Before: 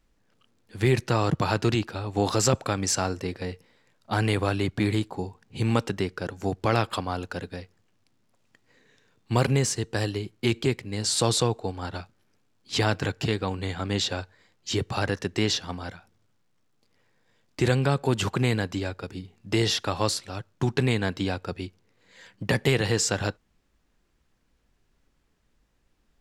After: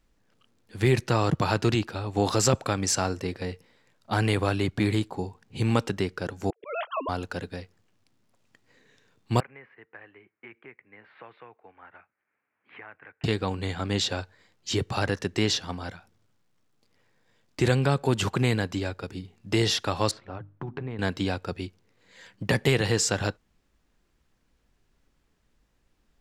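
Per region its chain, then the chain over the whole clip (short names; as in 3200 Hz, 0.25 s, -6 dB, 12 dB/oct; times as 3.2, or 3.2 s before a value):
6.5–7.09 sine-wave speech + HPF 210 Hz + auto swell 0.306 s
9.4–13.24 steep low-pass 2200 Hz 48 dB/oct + differentiator + three-band squash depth 70%
20.11–20.99 LPF 1500 Hz + compressor 5:1, threshold -31 dBFS + notches 50/100/150/200/250/300 Hz
whole clip: dry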